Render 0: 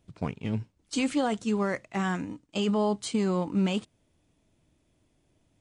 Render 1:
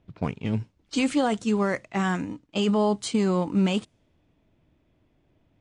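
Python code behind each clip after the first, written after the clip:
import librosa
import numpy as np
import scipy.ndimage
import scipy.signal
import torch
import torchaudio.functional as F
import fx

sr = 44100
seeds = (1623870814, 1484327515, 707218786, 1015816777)

y = fx.env_lowpass(x, sr, base_hz=2800.0, full_db=-25.5)
y = y * librosa.db_to_amplitude(3.5)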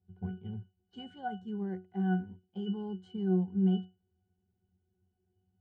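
y = fx.octave_resonator(x, sr, note='F#', decay_s=0.25)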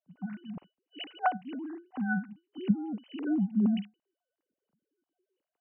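y = fx.sine_speech(x, sr)
y = y * librosa.db_to_amplitude(1.5)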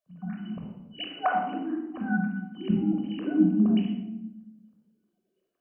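y = fx.room_shoebox(x, sr, seeds[0], volume_m3=3400.0, walls='furnished', distance_m=5.8)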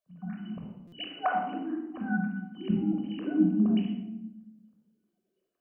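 y = fx.buffer_glitch(x, sr, at_s=(0.87,), block=256, repeats=8)
y = y * librosa.db_to_amplitude(-2.5)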